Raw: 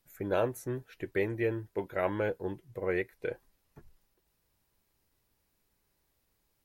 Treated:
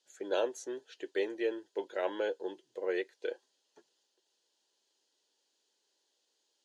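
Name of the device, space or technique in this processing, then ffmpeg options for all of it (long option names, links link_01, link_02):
phone speaker on a table: -af "highpass=frequency=350:width=0.5412,highpass=frequency=350:width=1.3066,equalizer=frequency=690:width_type=q:width=4:gain=-4,equalizer=frequency=1200:width_type=q:width=4:gain=-10,equalizer=frequency=2200:width_type=q:width=4:gain=-10,equalizer=frequency=3200:width_type=q:width=4:gain=9,equalizer=frequency=4500:width_type=q:width=4:gain=7,equalizer=frequency=6600:width_type=q:width=4:gain=8,lowpass=frequency=8100:width=0.5412,lowpass=frequency=8100:width=1.3066"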